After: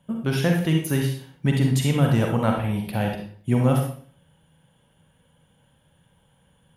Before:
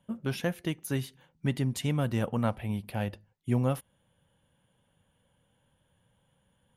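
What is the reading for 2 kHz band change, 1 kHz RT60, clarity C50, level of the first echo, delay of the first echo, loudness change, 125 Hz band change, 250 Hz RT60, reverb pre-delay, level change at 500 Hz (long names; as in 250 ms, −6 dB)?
+8.5 dB, 0.50 s, 2.5 dB, no echo audible, no echo audible, +9.0 dB, +9.5 dB, 0.55 s, 40 ms, +8.0 dB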